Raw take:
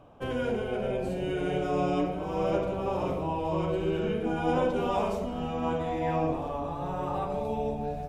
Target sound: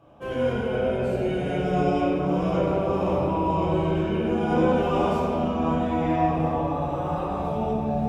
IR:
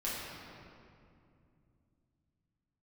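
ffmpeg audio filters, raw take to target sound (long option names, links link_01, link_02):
-filter_complex "[0:a]highpass=43[link_01];[1:a]atrim=start_sample=2205[link_02];[link_01][link_02]afir=irnorm=-1:irlink=0"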